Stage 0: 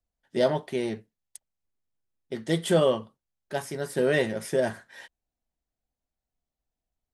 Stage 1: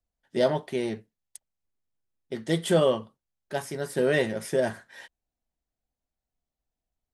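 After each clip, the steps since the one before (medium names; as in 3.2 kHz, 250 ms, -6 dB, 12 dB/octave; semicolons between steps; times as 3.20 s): no audible change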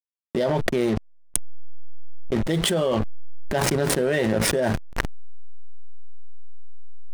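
hysteresis with a dead band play -32 dBFS; level flattener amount 100%; trim -4 dB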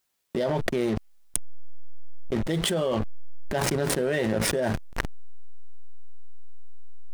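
word length cut 12-bit, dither triangular; trim -3.5 dB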